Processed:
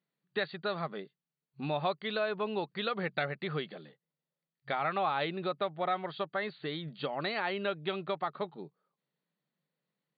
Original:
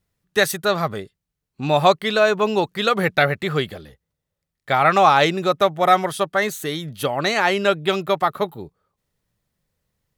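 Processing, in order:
brick-wall band-pass 130–4,700 Hz
downward compressor 2 to 1, threshold −25 dBFS, peak gain reduction 9 dB
level −9 dB

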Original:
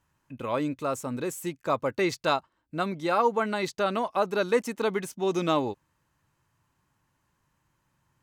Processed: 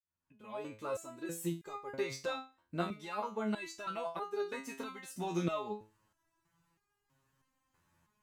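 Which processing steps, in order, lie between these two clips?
fade in at the beginning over 1.58 s
downward compressor, threshold −30 dBFS, peak gain reduction 12 dB
step-sequenced resonator 3.1 Hz 86–410 Hz
level +8 dB

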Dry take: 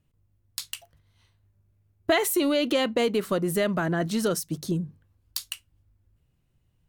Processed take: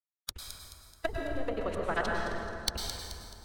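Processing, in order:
first difference
noise gate −57 dBFS, range −40 dB
leveller curve on the samples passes 5
low shelf with overshoot 110 Hz +13 dB, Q 1.5
treble cut that deepens with the level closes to 320 Hz, closed at −18.5 dBFS
speech leveller 2 s
phase-vocoder stretch with locked phases 0.5×
delay with a high-pass on its return 215 ms, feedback 44%, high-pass 3,900 Hz, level −7 dB
dense smooth reverb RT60 2.7 s, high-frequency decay 0.45×, pre-delay 90 ms, DRR −0.5 dB

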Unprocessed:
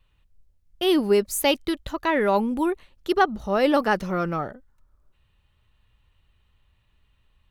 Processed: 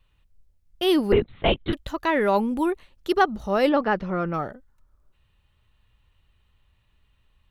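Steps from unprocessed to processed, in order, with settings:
0:01.12–0:01.73: linear-prediction vocoder at 8 kHz whisper
0:03.69–0:04.34: high-frequency loss of the air 270 metres

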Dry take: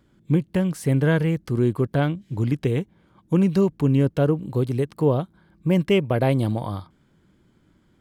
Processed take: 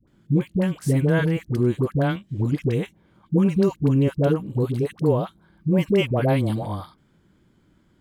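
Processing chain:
all-pass dispersion highs, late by 76 ms, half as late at 650 Hz

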